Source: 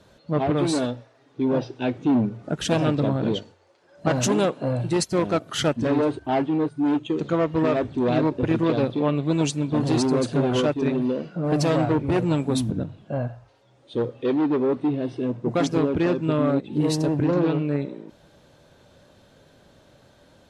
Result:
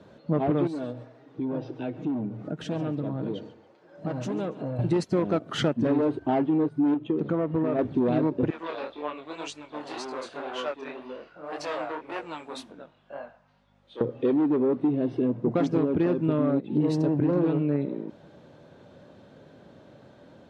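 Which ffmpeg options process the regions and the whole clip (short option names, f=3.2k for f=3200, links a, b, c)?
-filter_complex "[0:a]asettb=1/sr,asplit=3[a][b][c];[a]atrim=end=0.674[d];[b]atrim=start=0.67:end=4.79,asetpts=PTS-STARTPTS,afade=t=in:d=0.004:c=qsin,afade=t=out:st=4.116:d=0.004:c=qsin,aecho=1:1:6.4:0.35,atrim=end_sample=181692,acompressor=threshold=-38dB:ratio=2.5:attack=3.2:release=140:knee=1:detection=peak,aecho=1:1:141|282|423:0.126|0.0403|0.0129,atrim=end_sample=181692[e];[c]atrim=start=4.786[f];[d][e]acrossfade=d=0.004:c1=hsin:c2=qsin[g];[g][f]acrossfade=d=0.004:c1=qsin:c2=hsin,asettb=1/sr,asplit=3[h][i][j];[h]atrim=end=6.944[k];[i]atrim=start=6.94:end=7.79,asetpts=PTS-STARTPTS,afade=t=in:d=0.004:c=qsin,afade=t=out:st=0.846:d=0.004:c=qsin,aemphasis=mode=reproduction:type=75kf,acompressor=threshold=-27dB:ratio=2:attack=3.2:release=140:knee=1:detection=peak[l];[j]atrim=start=7.786[m];[k][l]acrossfade=d=0.004:c1=hsin:c2=qsin[n];[n][m]acrossfade=d=0.004:c1=qsin:c2=hsin,asettb=1/sr,asplit=3[o][p][q];[o]atrim=end=8.504[r];[p]atrim=start=8.5:end=14.01,asetpts=PTS-STARTPTS,afade=t=in:d=0.004:c=qsin,afade=t=out:st=5.506:d=0.004:c=qsin,highpass=1k,aeval=exprs='val(0)+0.000794*(sin(2*PI*50*n/s)+sin(2*PI*2*50*n/s)/2+sin(2*PI*3*50*n/s)/3+sin(2*PI*4*50*n/s)/4+sin(2*PI*5*50*n/s)/5)':c=same,flanger=delay=20:depth=7.4:speed=1.9[s];[q]atrim=start=14.006[t];[r][s]acrossfade=d=0.004:c1=hsin:c2=qsin[u];[u][t]acrossfade=d=0.004:c1=qsin:c2=hsin,highpass=230,aemphasis=mode=reproduction:type=riaa,acompressor=threshold=-24dB:ratio=3,volume=1.5dB"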